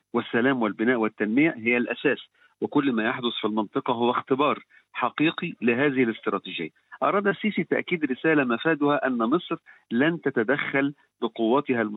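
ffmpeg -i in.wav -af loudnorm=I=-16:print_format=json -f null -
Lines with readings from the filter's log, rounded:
"input_i" : "-24.9",
"input_tp" : "-8.6",
"input_lra" : "1.2",
"input_thresh" : "-35.0",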